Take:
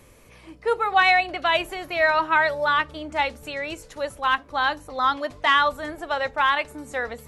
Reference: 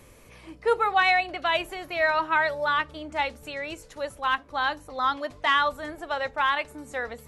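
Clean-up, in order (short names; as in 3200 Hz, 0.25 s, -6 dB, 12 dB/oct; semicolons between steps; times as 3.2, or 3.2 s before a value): gain correction -3.5 dB, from 0.92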